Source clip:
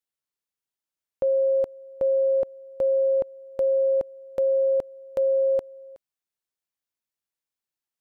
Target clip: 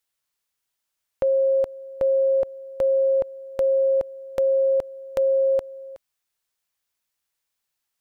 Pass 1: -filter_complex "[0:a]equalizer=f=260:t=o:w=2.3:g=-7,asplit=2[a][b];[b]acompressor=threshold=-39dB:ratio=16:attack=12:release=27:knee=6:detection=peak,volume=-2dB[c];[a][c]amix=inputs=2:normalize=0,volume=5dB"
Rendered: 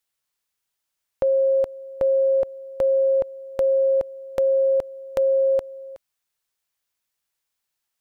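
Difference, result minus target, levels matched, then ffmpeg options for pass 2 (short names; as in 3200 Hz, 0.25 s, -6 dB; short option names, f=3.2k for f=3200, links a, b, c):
compressor: peak gain reduction -7.5 dB
-filter_complex "[0:a]equalizer=f=260:t=o:w=2.3:g=-7,asplit=2[a][b];[b]acompressor=threshold=-47dB:ratio=16:attack=12:release=27:knee=6:detection=peak,volume=-2dB[c];[a][c]amix=inputs=2:normalize=0,volume=5dB"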